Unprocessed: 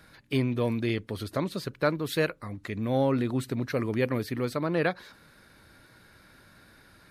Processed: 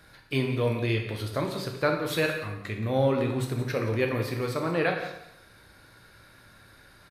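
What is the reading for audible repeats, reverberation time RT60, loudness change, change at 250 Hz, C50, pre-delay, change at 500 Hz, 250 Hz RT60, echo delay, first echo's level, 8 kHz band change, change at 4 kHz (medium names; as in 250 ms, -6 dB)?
1, 0.80 s, +1.0 dB, -1.5 dB, 5.5 dB, 6 ms, +1.5 dB, 0.75 s, 175 ms, -13.0 dB, +2.0 dB, +2.5 dB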